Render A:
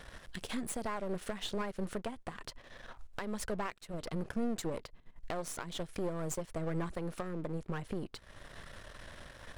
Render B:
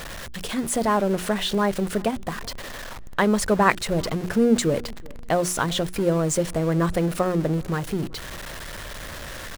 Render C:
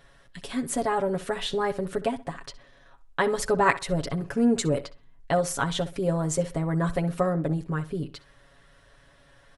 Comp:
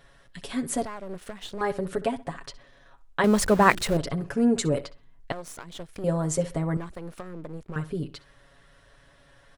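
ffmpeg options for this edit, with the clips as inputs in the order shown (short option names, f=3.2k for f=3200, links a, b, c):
-filter_complex "[0:a]asplit=3[a][b][c];[2:a]asplit=5[d][e][f][g][h];[d]atrim=end=0.852[i];[a]atrim=start=0.848:end=1.612[j];[e]atrim=start=1.608:end=3.242[k];[1:a]atrim=start=3.238:end=3.972[l];[f]atrim=start=3.968:end=5.322[m];[b]atrim=start=5.318:end=6.042[n];[g]atrim=start=6.038:end=6.772[o];[c]atrim=start=6.768:end=7.762[p];[h]atrim=start=7.758[q];[i][j]acrossfade=d=0.004:c1=hsin:c2=hsin[r];[r][k]acrossfade=d=0.004:c1=hsin:c2=hsin[s];[s][l]acrossfade=d=0.004:c1=hsin:c2=hsin[t];[t][m]acrossfade=d=0.004:c1=hsin:c2=hsin[u];[u][n]acrossfade=d=0.004:c1=hsin:c2=hsin[v];[v][o]acrossfade=d=0.004:c1=hsin:c2=hsin[w];[w][p]acrossfade=d=0.004:c1=hsin:c2=hsin[x];[x][q]acrossfade=d=0.004:c1=hsin:c2=hsin"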